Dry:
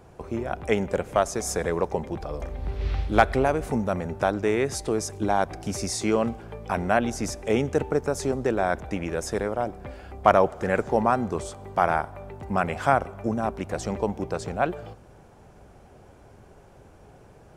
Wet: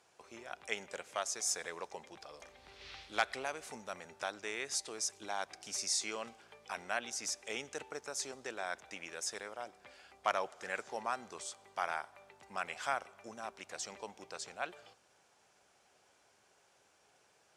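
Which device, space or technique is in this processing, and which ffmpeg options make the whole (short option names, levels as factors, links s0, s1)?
piezo pickup straight into a mixer: -af "lowpass=5900,aderivative,volume=1.41"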